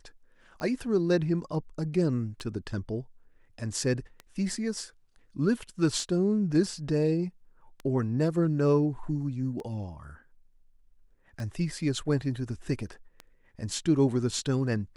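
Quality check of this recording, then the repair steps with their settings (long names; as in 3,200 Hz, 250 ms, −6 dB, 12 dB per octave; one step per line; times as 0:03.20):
scratch tick 33 1/3 rpm −25 dBFS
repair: click removal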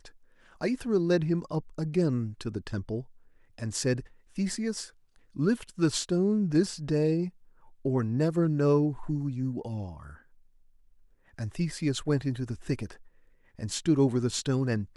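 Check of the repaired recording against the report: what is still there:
none of them is left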